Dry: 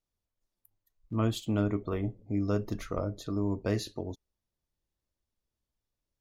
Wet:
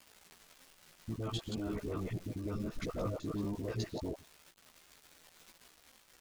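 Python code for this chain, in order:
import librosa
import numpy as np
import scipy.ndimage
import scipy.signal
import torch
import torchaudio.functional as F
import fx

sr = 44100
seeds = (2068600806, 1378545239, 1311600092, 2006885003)

y = fx.local_reverse(x, sr, ms=98.0)
y = scipy.signal.sosfilt(scipy.signal.butter(2, 6400.0, 'lowpass', fs=sr, output='sos'), y)
y = fx.level_steps(y, sr, step_db=20)
y = fx.dispersion(y, sr, late='highs', ms=63.0, hz=820.0)
y = fx.dmg_crackle(y, sr, seeds[0], per_s=270.0, level_db=-46.0)
y = fx.chorus_voices(y, sr, voices=4, hz=0.4, base_ms=15, depth_ms=3.7, mix_pct=50)
y = y * 10.0 ** (7.0 / 20.0)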